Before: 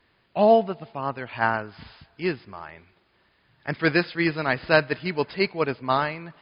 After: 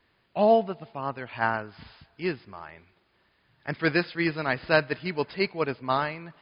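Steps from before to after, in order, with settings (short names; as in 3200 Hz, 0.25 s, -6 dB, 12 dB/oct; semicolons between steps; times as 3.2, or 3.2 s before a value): gain -3 dB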